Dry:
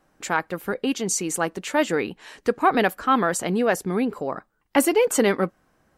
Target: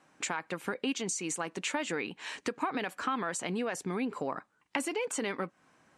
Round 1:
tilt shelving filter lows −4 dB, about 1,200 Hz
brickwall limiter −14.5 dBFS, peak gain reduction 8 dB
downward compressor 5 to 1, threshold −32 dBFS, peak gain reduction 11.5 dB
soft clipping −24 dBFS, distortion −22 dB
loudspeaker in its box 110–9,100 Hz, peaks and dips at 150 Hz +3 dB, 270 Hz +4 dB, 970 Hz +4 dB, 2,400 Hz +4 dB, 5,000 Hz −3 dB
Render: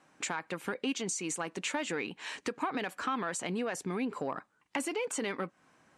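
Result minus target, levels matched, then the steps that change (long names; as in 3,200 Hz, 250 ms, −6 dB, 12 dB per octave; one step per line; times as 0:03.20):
soft clipping: distortion +19 dB
change: soft clipping −12.5 dBFS, distortion −41 dB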